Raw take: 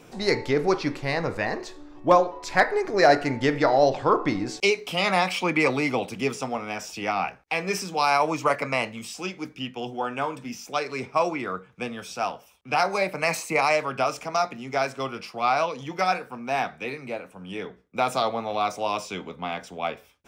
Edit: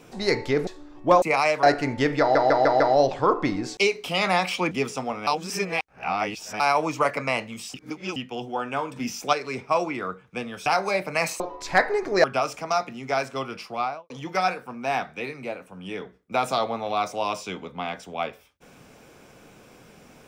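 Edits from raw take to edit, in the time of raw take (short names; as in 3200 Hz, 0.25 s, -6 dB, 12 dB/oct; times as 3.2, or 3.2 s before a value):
0.67–1.67 cut
2.22–3.06 swap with 13.47–13.88
3.63 stutter 0.15 s, 5 plays
5.54–6.16 cut
6.72–8.05 reverse
9.19–9.61 reverse
10.41–10.78 gain +5.5 dB
12.11–12.73 cut
15.32–15.74 studio fade out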